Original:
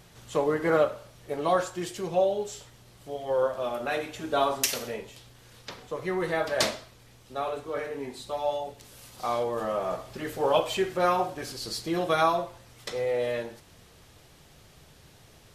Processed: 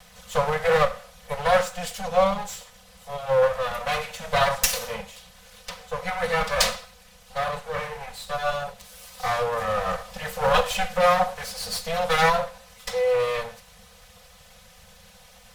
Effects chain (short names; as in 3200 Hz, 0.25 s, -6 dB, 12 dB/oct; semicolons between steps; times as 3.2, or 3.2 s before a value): minimum comb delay 4 ms; elliptic band-stop 200–490 Hz; gain +6.5 dB